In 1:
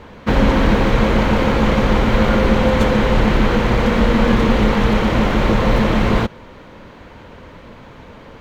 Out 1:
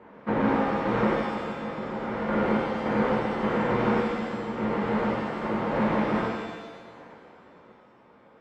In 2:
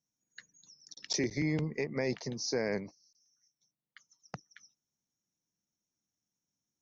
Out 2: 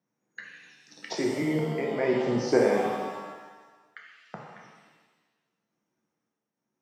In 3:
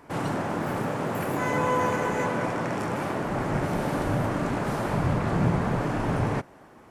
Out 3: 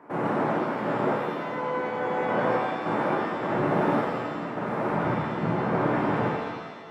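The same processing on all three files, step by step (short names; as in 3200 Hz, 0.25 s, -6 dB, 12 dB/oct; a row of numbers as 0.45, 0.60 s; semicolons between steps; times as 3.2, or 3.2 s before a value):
random-step tremolo, depth 75%; three-band isolator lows -24 dB, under 150 Hz, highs -21 dB, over 2100 Hz; shimmer reverb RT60 1.3 s, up +7 st, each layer -8 dB, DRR -1.5 dB; match loudness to -27 LUFS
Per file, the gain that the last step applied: -9.0, +13.5, +2.0 dB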